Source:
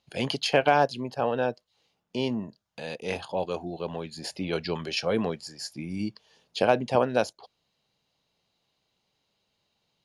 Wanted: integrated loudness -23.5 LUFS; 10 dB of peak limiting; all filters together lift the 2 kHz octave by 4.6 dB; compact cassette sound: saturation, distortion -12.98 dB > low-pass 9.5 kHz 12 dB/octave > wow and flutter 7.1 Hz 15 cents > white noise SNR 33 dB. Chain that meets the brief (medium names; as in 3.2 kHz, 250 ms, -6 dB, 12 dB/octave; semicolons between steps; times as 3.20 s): peaking EQ 2 kHz +6.5 dB; peak limiter -15.5 dBFS; saturation -22.5 dBFS; low-pass 9.5 kHz 12 dB/octave; wow and flutter 7.1 Hz 15 cents; white noise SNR 33 dB; trim +9.5 dB